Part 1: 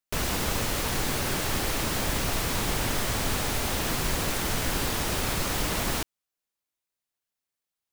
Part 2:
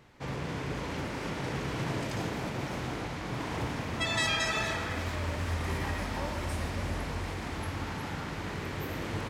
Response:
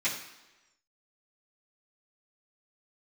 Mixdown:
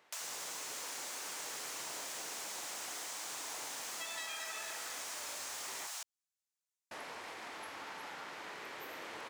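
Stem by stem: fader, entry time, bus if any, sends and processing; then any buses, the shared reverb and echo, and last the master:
-12.0 dB, 0.00 s, no send, inverse Chebyshev high-pass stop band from 340 Hz, stop band 40 dB; peaking EQ 6.9 kHz +11 dB 1.2 oct
-5.0 dB, 0.00 s, muted 5.87–6.91 s, no send, high-pass 560 Hz 12 dB/octave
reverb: none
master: compression 4:1, threshold -41 dBFS, peak gain reduction 10 dB

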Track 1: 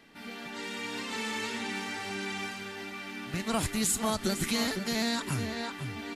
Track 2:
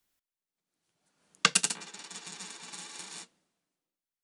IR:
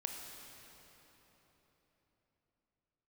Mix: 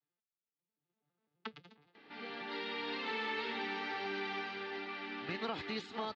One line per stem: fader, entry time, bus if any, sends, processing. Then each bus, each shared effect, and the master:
-1.5 dB, 1.95 s, no send, high-pass 230 Hz 12 dB/octave; compression 10:1, threshold -32 dBFS, peak gain reduction 8 dB
1.04 s -12 dB -> 1.64 s -23.5 dB, 0.00 s, no send, vocoder on a broken chord minor triad, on D3, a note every 84 ms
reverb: none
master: steep low-pass 4.3 kHz 36 dB/octave; comb 2.4 ms, depth 34%

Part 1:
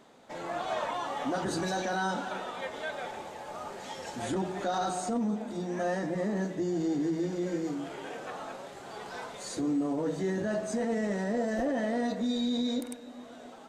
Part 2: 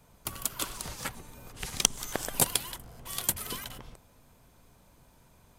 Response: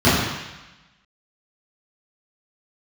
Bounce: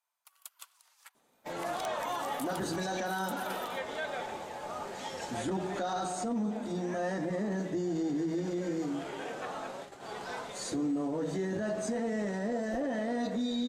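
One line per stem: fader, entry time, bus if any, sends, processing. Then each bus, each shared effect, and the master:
+1.0 dB, 1.15 s, no send, none
-15.0 dB, 0.00 s, no send, sine folder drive 5 dB, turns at -1.5 dBFS; compression 2:1, threshold -30 dBFS, peak gain reduction 11 dB; high-pass 820 Hz 24 dB/octave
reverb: none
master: gate -43 dBFS, range -15 dB; peak limiter -26 dBFS, peak gain reduction 7 dB

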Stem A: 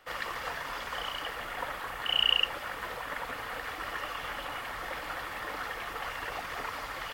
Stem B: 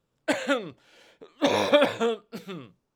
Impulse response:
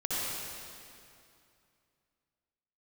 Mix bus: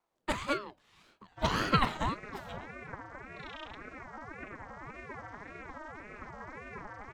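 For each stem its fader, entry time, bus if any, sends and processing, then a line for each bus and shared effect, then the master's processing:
-4.5 dB, 1.30 s, no send, vocoder on a broken chord major triad, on G#3, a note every 261 ms; high-order bell 2.9 kHz -15 dB 1.3 oct
-4.0 dB, 0.00 s, no send, none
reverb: none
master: ring modulator with a swept carrier 590 Hz, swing 50%, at 1.8 Hz

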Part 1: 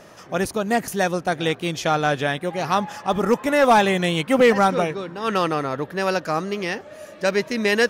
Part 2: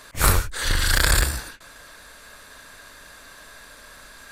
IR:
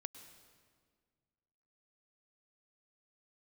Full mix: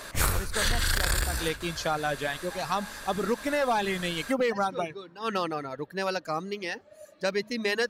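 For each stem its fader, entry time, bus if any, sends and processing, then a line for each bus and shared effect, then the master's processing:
-6.0 dB, 0.00 s, no send, reverb removal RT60 1.8 s; peaking EQ 4.3 kHz +7 dB 0.28 oct; de-hum 107 Hz, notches 2
+2.0 dB, 0.00 s, send -8.5 dB, none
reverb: on, RT60 1.8 s, pre-delay 96 ms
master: compression 10:1, threshold -22 dBFS, peak gain reduction 14.5 dB

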